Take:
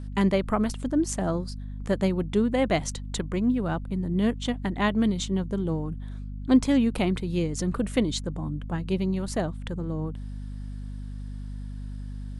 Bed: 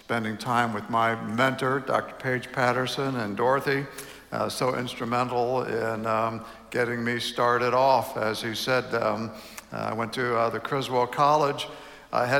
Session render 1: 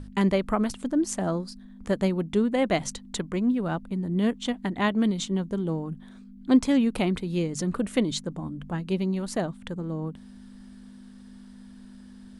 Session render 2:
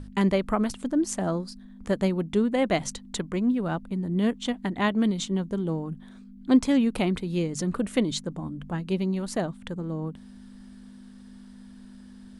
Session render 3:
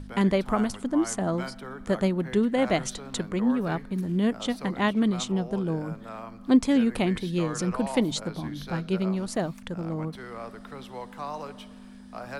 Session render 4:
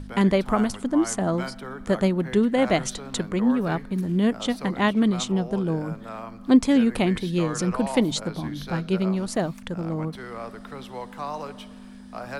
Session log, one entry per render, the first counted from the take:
hum notches 50/100/150 Hz
no audible change
add bed -15 dB
trim +3 dB

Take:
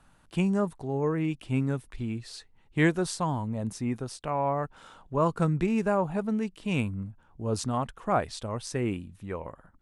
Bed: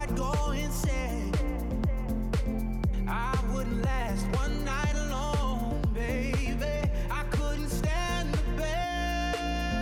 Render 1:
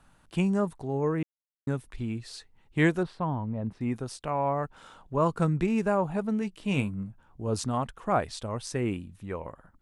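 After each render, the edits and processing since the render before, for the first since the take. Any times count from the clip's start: 1.23–1.67 s: mute; 3.03–3.81 s: distance through air 430 m; 6.40–7.48 s: doubling 15 ms -10 dB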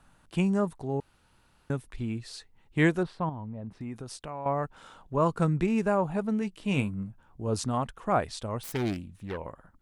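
1.00–1.70 s: room tone; 3.29–4.46 s: compression 3:1, threshold -36 dBFS; 8.63–9.38 s: self-modulated delay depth 0.46 ms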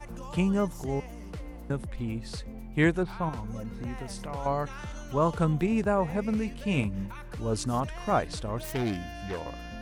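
add bed -11 dB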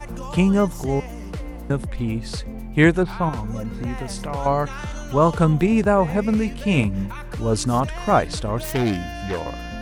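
trim +8.5 dB

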